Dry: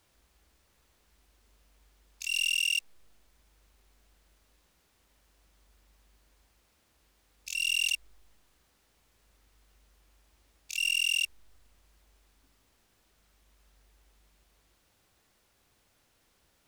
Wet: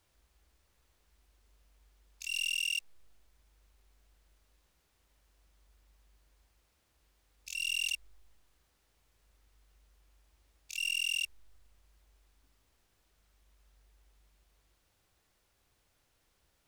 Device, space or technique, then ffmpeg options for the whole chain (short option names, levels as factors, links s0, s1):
low shelf boost with a cut just above: -af "lowshelf=f=92:g=5.5,equalizer=f=230:t=o:w=0.64:g=-3.5,volume=0.562"